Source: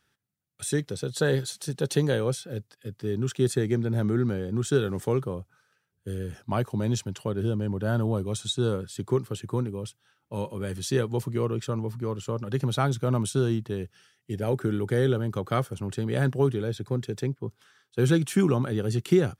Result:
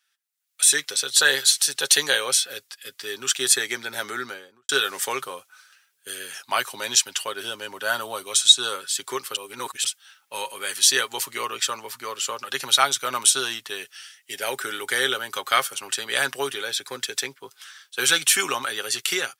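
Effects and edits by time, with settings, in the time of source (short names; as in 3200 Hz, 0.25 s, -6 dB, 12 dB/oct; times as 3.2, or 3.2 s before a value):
4.11–4.69 studio fade out
9.36–9.84 reverse
whole clip: Bessel high-pass 2200 Hz, order 2; comb 7.4 ms, depth 41%; AGC gain up to 16.5 dB; gain +2 dB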